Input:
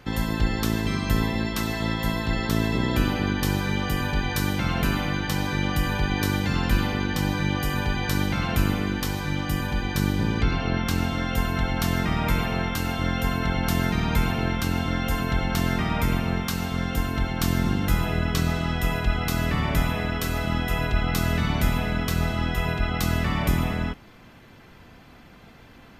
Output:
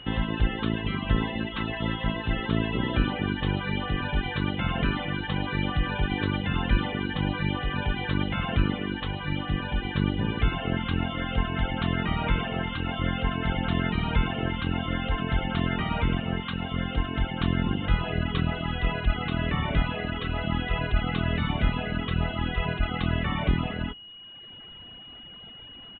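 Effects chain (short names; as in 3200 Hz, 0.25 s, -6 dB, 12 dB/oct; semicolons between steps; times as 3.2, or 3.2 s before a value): reverb removal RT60 1.2 s; downsampling 8000 Hz; whine 2900 Hz -43 dBFS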